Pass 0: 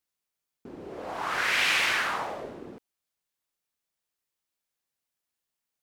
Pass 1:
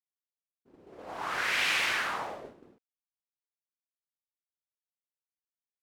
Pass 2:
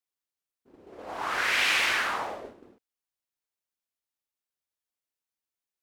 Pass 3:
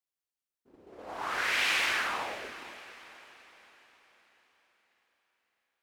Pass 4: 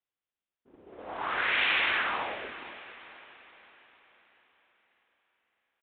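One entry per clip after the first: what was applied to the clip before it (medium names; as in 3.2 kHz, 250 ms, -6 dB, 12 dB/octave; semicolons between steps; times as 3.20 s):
expander -33 dBFS; trim -3.5 dB
peaking EQ 150 Hz -8 dB 0.42 oct; trim +3.5 dB
echo that smears into a reverb 467 ms, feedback 49%, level -14.5 dB; trim -3.5 dB
resampled via 8 kHz; trim +2 dB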